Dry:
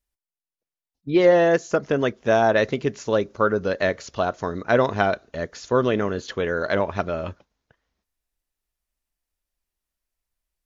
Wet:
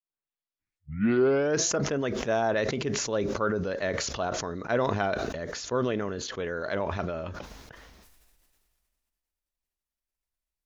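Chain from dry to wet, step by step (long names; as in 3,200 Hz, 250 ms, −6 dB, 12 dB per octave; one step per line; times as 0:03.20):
turntable start at the beginning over 1.68 s
level that may fall only so fast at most 26 dB per second
level −8.5 dB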